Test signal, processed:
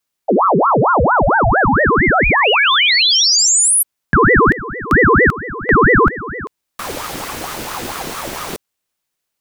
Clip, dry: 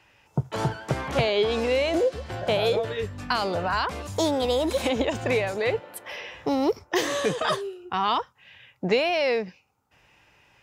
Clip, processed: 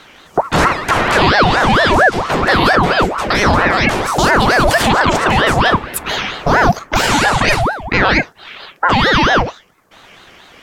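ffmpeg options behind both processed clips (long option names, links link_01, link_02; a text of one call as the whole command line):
ffmpeg -i in.wav -af "alimiter=level_in=20.5dB:limit=-1dB:release=50:level=0:latency=1,aeval=exprs='val(0)*sin(2*PI*760*n/s+760*0.65/4.4*sin(2*PI*4.4*n/s))':channel_layout=same" out.wav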